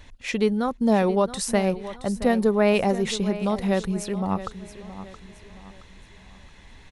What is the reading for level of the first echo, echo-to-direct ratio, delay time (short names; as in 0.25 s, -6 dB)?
-14.0 dB, -13.5 dB, 0.672 s